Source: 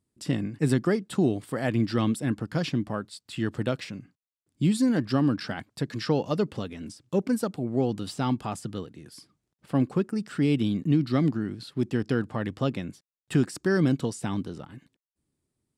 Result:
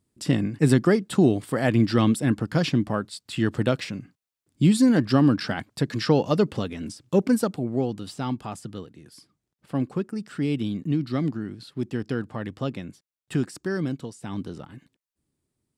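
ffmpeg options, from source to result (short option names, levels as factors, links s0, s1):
-af "volume=5.31,afade=t=out:st=7.35:d=0.59:silence=0.446684,afade=t=out:st=13.43:d=0.76:silence=0.473151,afade=t=in:st=14.19:d=0.29:silence=0.334965"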